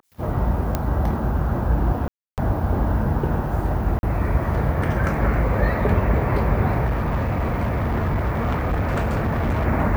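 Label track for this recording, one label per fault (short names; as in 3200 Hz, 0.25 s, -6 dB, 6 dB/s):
0.750000	0.750000	pop -8 dBFS
2.080000	2.380000	gap 0.298 s
3.990000	4.030000	gap 41 ms
6.850000	9.650000	clipped -18 dBFS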